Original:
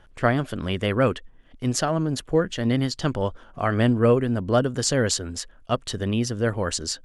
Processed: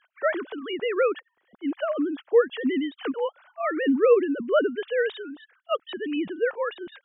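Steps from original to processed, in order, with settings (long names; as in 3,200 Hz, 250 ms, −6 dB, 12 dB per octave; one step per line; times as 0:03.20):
three sine waves on the formant tracks
0:01.01–0:01.95: high-frequency loss of the air 160 metres
level −2 dB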